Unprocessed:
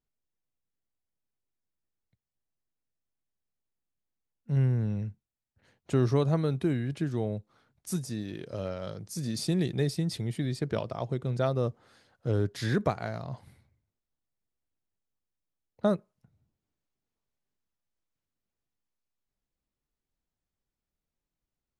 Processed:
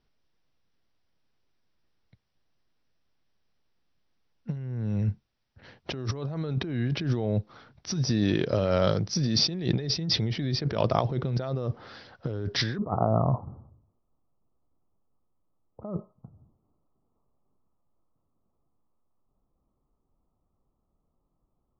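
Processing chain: Chebyshev low-pass 5800 Hz, order 8, from 12.77 s 1300 Hz; negative-ratio compressor -37 dBFS, ratio -1; gain +9 dB

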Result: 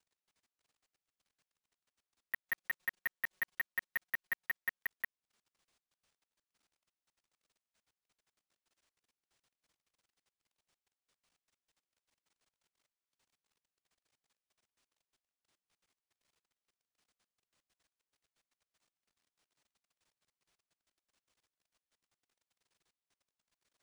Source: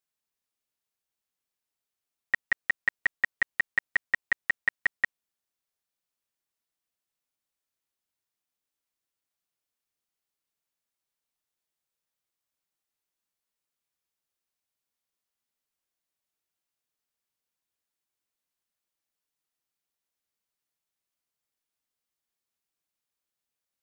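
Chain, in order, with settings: careless resampling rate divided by 3×, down none, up hold; level quantiser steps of 22 dB; 2.46–4.79 comb 5.5 ms, depth 95%; gain +8.5 dB

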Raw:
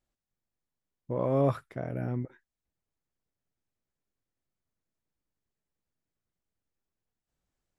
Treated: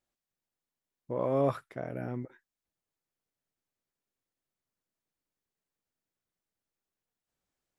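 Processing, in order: low shelf 150 Hz -11 dB

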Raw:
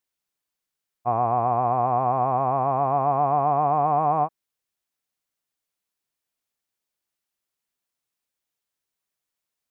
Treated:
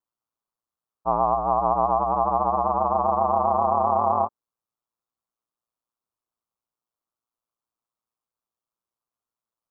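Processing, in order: ring modulator 58 Hz; resonant high shelf 1500 Hz -8 dB, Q 3

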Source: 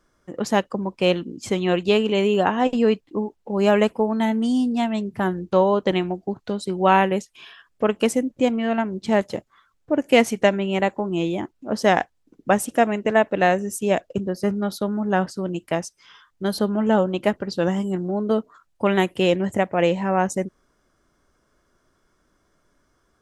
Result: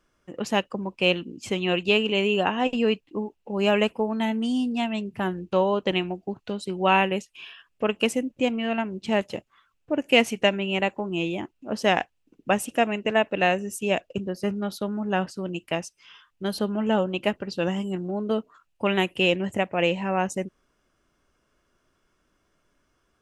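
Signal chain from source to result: bell 2700 Hz +11 dB 0.4 oct; gain -4.5 dB

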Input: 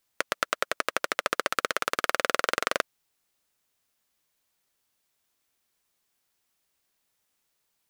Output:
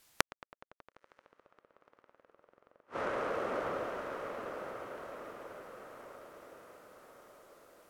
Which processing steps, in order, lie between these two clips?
vocal rider; treble ducked by the level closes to 720 Hz, closed at -26 dBFS; on a send: diffused feedback echo 0.965 s, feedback 50%, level -10 dB; on the sum: compressor 4:1, threshold -35 dBFS, peak gain reduction 14 dB; flipped gate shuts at -29 dBFS, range -33 dB; gain +8 dB

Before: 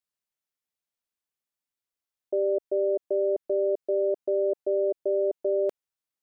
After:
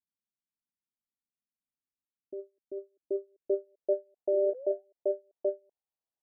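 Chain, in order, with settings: low-pass sweep 240 Hz -> 780 Hz, 2.68–4.26; painted sound rise, 4.32–4.85, 340–800 Hz -38 dBFS; ending taper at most 340 dB/s; gain -5.5 dB

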